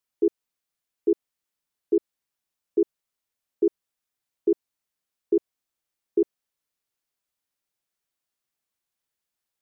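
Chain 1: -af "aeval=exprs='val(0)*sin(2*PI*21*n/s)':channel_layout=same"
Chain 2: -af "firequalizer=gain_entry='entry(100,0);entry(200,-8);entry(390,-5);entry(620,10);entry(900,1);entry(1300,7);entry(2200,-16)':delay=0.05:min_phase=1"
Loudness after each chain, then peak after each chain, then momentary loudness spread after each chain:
−30.5, −32.0 LKFS; −12.0, −16.5 dBFS; 4, 3 LU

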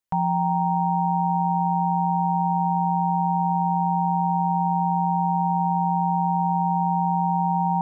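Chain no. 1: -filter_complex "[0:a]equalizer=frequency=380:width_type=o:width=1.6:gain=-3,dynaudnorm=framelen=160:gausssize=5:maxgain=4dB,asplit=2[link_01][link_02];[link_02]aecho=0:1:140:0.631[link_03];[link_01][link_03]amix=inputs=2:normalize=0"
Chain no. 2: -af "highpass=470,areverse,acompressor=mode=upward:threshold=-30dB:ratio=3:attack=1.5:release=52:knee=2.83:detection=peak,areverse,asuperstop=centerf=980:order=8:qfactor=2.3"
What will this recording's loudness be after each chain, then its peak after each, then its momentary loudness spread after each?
−21.5, −30.0 LKFS; −14.5, −18.0 dBFS; 0, 0 LU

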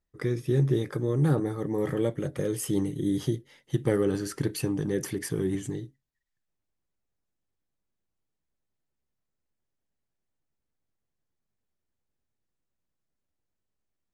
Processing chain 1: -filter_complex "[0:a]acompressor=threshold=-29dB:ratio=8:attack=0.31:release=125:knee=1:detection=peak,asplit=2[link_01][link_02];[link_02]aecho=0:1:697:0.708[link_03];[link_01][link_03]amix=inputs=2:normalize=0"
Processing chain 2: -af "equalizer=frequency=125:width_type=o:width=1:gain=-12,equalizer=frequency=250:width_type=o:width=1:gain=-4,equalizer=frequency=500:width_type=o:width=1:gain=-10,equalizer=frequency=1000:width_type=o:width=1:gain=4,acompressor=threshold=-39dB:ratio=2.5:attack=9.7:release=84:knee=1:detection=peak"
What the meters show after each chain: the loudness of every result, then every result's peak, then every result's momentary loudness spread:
−35.5, −40.5 LKFS; −22.0, −25.0 dBFS; 5, 5 LU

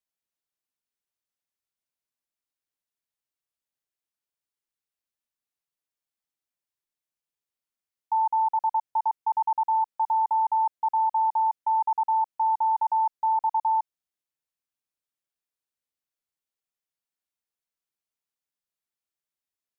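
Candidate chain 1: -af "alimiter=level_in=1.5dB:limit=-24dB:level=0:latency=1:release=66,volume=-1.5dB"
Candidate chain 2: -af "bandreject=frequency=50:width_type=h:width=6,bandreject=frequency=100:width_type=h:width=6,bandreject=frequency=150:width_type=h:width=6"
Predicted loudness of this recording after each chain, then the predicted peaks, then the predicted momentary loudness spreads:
−31.5, −25.0 LKFS; −25.5, −19.5 dBFS; 4, 4 LU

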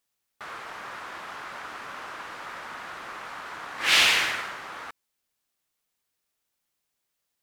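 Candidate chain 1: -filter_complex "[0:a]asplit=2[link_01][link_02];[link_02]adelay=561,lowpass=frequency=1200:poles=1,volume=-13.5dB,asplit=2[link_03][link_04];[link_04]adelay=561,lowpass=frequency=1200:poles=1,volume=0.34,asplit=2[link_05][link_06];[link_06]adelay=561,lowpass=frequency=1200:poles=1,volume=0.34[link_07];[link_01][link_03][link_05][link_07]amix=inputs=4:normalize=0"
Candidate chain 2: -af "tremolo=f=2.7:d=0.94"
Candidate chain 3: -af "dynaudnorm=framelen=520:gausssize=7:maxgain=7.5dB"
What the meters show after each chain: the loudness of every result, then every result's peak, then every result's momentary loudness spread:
−27.5, −27.0, −20.5 LKFS; −6.5, −8.0, −2.0 dBFS; 20, 21, 23 LU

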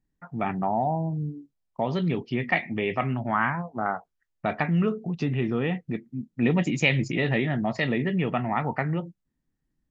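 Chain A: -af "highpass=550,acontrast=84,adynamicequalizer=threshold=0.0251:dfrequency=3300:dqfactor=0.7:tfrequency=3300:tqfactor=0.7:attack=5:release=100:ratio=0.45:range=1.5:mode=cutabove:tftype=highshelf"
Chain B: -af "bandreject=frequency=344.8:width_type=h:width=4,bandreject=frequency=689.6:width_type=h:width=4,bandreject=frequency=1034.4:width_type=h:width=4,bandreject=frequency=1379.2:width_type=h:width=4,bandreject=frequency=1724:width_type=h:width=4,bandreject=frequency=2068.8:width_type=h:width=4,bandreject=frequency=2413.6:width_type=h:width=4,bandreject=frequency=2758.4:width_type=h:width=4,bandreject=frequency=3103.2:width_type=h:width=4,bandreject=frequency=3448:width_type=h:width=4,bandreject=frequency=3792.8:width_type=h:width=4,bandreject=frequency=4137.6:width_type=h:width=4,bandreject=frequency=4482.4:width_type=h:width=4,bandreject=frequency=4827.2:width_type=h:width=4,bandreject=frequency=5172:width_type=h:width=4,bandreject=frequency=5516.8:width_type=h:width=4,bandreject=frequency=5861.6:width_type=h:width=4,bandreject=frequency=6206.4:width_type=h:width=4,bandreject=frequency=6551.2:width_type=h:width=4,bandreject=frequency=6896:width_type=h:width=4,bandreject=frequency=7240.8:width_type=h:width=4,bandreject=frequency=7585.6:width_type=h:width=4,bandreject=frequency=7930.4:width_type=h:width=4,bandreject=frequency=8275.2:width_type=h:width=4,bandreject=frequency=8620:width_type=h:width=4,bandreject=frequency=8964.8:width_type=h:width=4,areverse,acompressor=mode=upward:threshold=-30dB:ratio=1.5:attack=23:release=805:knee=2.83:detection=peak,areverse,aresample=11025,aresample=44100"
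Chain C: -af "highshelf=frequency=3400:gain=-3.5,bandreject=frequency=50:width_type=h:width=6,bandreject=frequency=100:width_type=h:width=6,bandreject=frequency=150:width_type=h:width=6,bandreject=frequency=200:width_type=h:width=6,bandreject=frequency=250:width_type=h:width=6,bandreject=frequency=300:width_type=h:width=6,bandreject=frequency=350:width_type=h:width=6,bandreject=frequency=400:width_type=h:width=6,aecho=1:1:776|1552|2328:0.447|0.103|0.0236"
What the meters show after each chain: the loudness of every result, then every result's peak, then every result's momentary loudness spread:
−24.0, −27.0, −27.0 LKFS; −4.0, −8.0, −9.0 dBFS; 13, 9, 9 LU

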